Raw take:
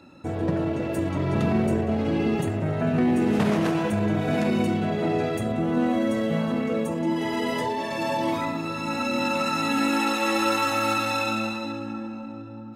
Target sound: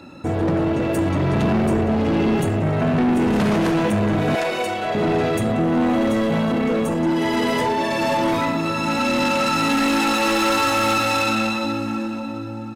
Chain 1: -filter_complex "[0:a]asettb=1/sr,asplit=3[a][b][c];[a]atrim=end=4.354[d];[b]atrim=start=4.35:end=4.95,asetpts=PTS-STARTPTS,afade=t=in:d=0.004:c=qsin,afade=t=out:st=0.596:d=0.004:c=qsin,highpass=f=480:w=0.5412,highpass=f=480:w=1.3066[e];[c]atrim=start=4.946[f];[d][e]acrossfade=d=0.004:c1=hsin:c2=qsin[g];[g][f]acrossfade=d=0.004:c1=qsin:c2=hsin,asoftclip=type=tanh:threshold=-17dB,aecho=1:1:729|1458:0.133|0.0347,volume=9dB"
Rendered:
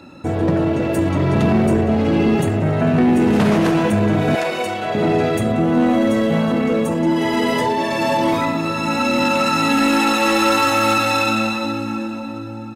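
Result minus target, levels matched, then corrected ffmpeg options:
soft clip: distortion -8 dB
-filter_complex "[0:a]asettb=1/sr,asplit=3[a][b][c];[a]atrim=end=4.354[d];[b]atrim=start=4.35:end=4.95,asetpts=PTS-STARTPTS,afade=t=in:d=0.004:c=qsin,afade=t=out:st=0.596:d=0.004:c=qsin,highpass=f=480:w=0.5412,highpass=f=480:w=1.3066[e];[c]atrim=start=4.946[f];[d][e]acrossfade=d=0.004:c1=hsin:c2=qsin[g];[g][f]acrossfade=d=0.004:c1=qsin:c2=hsin,asoftclip=type=tanh:threshold=-24dB,aecho=1:1:729|1458:0.133|0.0347,volume=9dB"

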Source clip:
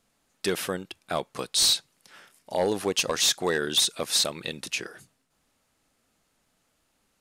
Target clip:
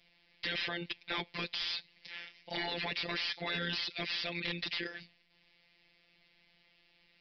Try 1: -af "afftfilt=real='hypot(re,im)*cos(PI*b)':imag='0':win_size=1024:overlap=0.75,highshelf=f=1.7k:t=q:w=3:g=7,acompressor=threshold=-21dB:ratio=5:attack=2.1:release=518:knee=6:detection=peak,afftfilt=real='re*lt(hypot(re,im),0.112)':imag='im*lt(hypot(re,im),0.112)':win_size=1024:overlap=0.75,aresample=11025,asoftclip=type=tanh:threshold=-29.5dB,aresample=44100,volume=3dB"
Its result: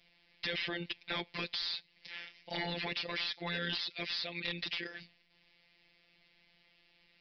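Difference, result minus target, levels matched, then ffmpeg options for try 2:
compressor: peak gain reduction +6 dB
-af "afftfilt=real='hypot(re,im)*cos(PI*b)':imag='0':win_size=1024:overlap=0.75,highshelf=f=1.7k:t=q:w=3:g=7,acompressor=threshold=-13.5dB:ratio=5:attack=2.1:release=518:knee=6:detection=peak,afftfilt=real='re*lt(hypot(re,im),0.112)':imag='im*lt(hypot(re,im),0.112)':win_size=1024:overlap=0.75,aresample=11025,asoftclip=type=tanh:threshold=-29.5dB,aresample=44100,volume=3dB"

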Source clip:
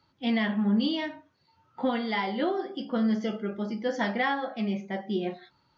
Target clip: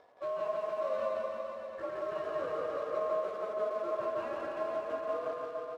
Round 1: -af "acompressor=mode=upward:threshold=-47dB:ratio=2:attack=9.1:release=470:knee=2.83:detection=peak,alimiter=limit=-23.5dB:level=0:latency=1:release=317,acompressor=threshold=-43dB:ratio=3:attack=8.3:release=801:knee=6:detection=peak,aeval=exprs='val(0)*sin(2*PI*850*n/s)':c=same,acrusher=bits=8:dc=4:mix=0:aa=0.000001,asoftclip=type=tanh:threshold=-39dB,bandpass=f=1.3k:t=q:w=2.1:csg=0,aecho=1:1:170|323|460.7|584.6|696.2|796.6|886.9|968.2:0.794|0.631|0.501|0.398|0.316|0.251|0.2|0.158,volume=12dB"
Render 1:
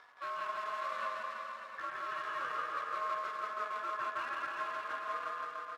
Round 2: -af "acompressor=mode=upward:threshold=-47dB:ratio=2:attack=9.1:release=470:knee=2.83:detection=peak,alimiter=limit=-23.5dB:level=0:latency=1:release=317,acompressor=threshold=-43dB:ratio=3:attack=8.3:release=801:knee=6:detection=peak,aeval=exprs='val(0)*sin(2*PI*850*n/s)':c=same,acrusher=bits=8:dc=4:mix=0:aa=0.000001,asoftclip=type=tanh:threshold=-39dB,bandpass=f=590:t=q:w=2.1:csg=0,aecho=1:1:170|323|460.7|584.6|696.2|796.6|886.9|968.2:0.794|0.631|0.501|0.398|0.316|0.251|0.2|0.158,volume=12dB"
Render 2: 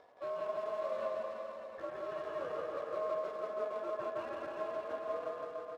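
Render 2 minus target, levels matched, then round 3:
compressor: peak gain reduction +4.5 dB
-af "acompressor=mode=upward:threshold=-47dB:ratio=2:attack=9.1:release=470:knee=2.83:detection=peak,alimiter=limit=-23.5dB:level=0:latency=1:release=317,acompressor=threshold=-36dB:ratio=3:attack=8.3:release=801:knee=6:detection=peak,aeval=exprs='val(0)*sin(2*PI*850*n/s)':c=same,acrusher=bits=8:dc=4:mix=0:aa=0.000001,asoftclip=type=tanh:threshold=-39dB,bandpass=f=590:t=q:w=2.1:csg=0,aecho=1:1:170|323|460.7|584.6|696.2|796.6|886.9|968.2:0.794|0.631|0.501|0.398|0.316|0.251|0.2|0.158,volume=12dB"

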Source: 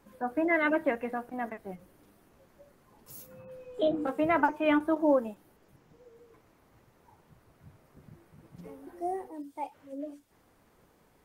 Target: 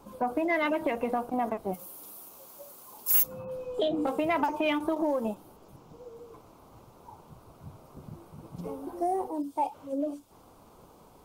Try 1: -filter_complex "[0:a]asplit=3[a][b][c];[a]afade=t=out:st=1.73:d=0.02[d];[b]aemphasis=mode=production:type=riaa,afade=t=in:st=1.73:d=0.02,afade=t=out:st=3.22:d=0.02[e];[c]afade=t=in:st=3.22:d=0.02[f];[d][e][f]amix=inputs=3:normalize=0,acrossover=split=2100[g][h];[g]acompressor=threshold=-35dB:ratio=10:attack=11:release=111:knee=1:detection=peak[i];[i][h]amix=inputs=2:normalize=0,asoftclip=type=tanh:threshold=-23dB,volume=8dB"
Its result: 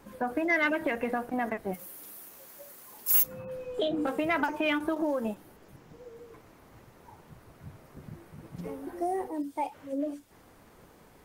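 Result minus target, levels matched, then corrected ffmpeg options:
1000 Hz band -2.5 dB
-filter_complex "[0:a]asplit=3[a][b][c];[a]afade=t=out:st=1.73:d=0.02[d];[b]aemphasis=mode=production:type=riaa,afade=t=in:st=1.73:d=0.02,afade=t=out:st=3.22:d=0.02[e];[c]afade=t=in:st=3.22:d=0.02[f];[d][e][f]amix=inputs=3:normalize=0,acrossover=split=2100[g][h];[g]acompressor=threshold=-35dB:ratio=10:attack=11:release=111:knee=1:detection=peak,lowpass=f=1.1k:t=q:w=1.6[i];[i][h]amix=inputs=2:normalize=0,asoftclip=type=tanh:threshold=-23dB,volume=8dB"

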